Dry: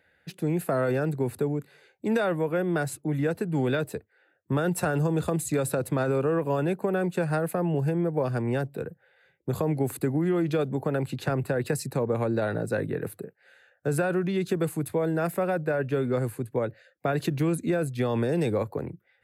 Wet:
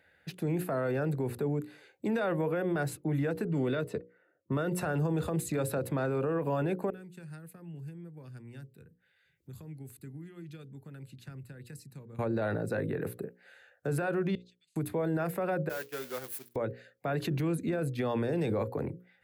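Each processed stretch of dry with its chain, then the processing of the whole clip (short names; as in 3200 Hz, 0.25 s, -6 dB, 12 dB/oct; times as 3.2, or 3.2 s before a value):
3.45–4.81 notch comb 810 Hz + low-pass opened by the level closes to 1100 Hz, open at -23.5 dBFS
6.9–12.19 passive tone stack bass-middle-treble 6-0-2 + upward compressor, threshold -58 dBFS + notch 1100 Hz, Q 28
14.35–14.76 inverse Chebyshev high-pass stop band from 1200 Hz, stop band 60 dB + tape spacing loss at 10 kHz 38 dB
15.69–16.56 switching spikes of -25 dBFS + expander -24 dBFS + HPF 1500 Hz 6 dB/oct
whole clip: notches 60/120/180/240/300/360/420/480/540 Hz; dynamic EQ 8400 Hz, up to -7 dB, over -54 dBFS, Q 0.75; limiter -23 dBFS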